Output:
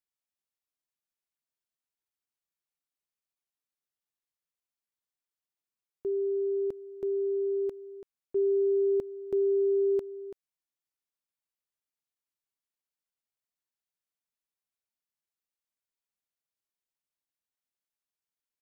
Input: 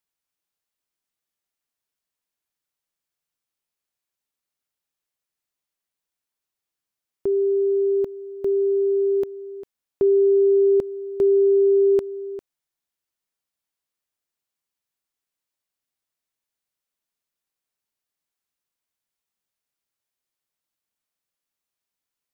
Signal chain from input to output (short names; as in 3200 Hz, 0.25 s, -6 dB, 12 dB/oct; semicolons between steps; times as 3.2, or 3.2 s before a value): tempo 1.2×; gain -9 dB